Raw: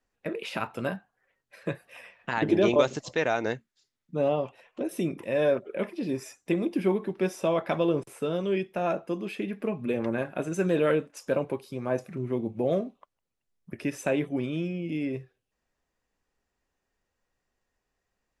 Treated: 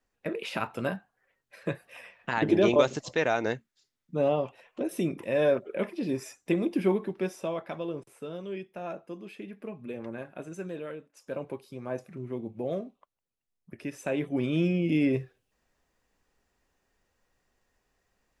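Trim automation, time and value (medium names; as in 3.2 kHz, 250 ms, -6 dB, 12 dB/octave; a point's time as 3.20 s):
6.94 s 0 dB
7.73 s -9.5 dB
10.51 s -9.5 dB
10.97 s -16.5 dB
11.48 s -6 dB
13.99 s -6 dB
14.67 s +6 dB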